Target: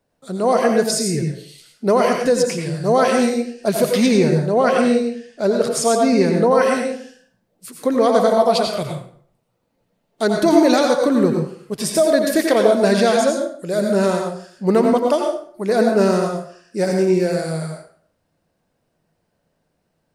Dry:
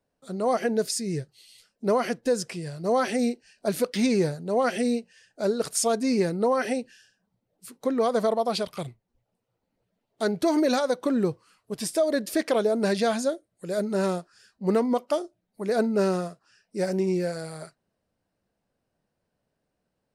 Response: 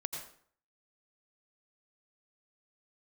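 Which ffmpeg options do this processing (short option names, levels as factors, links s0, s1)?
-filter_complex "[0:a]asettb=1/sr,asplit=3[s0][s1][s2];[s0]atrim=end=4.084[s3];[s1]atrim=start=4.08:end=6.51,asetpts=PTS-STARTPTS,afade=t=in:d=0.004:c=qsin,afade=t=out:st=2.426:d=0.004:c=qsin,highshelf=f=6000:g=-7.5[s4];[s2]atrim=start=6.506[s5];[s3][s4]acrossfade=d=0.004:c1=hsin:c2=qsin[s6];[s6][s5]acrossfade=d=0.004:c1=qsin:c2=hsin[s7];[1:a]atrim=start_sample=2205[s8];[s7][s8]afir=irnorm=-1:irlink=0,volume=2.66"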